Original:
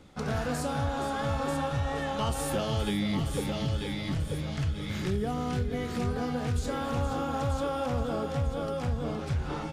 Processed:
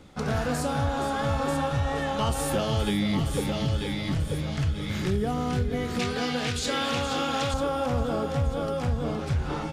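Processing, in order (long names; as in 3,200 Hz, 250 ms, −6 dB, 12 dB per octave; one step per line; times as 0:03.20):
0:05.99–0:07.54: meter weighting curve D
level +3.5 dB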